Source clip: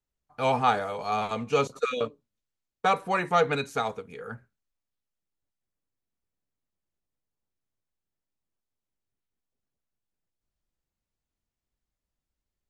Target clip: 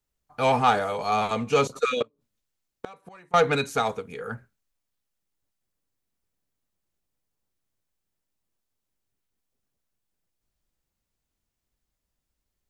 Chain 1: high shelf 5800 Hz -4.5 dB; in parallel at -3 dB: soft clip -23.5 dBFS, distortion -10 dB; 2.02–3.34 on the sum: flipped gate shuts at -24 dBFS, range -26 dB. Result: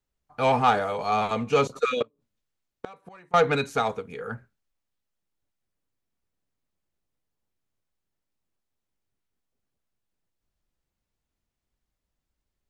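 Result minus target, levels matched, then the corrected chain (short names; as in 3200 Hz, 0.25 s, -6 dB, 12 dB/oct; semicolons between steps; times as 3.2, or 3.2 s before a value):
8000 Hz band -4.0 dB
high shelf 5800 Hz +3.5 dB; in parallel at -3 dB: soft clip -23.5 dBFS, distortion -9 dB; 2.02–3.34 on the sum: flipped gate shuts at -24 dBFS, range -26 dB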